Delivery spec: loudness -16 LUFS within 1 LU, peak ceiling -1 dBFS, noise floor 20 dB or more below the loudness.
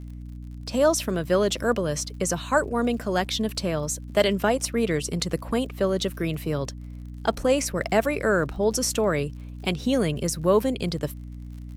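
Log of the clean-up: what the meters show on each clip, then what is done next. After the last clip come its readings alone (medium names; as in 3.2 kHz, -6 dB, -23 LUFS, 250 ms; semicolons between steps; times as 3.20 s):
tick rate 53 per s; hum 60 Hz; highest harmonic 300 Hz; hum level -35 dBFS; loudness -25.0 LUFS; peak level -6.5 dBFS; loudness target -16.0 LUFS
-> de-click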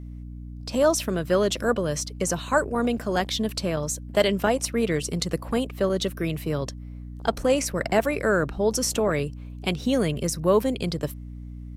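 tick rate 0.51 per s; hum 60 Hz; highest harmonic 300 Hz; hum level -35 dBFS
-> de-hum 60 Hz, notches 5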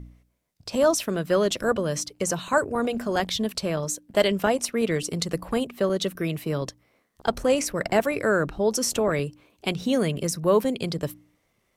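hum not found; loudness -25.5 LUFS; peak level -6.5 dBFS; loudness target -16.0 LUFS
-> trim +9.5 dB; peak limiter -1 dBFS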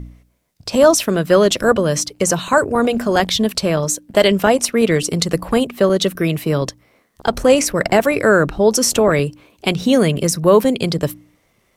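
loudness -16.0 LUFS; peak level -1.0 dBFS; noise floor -61 dBFS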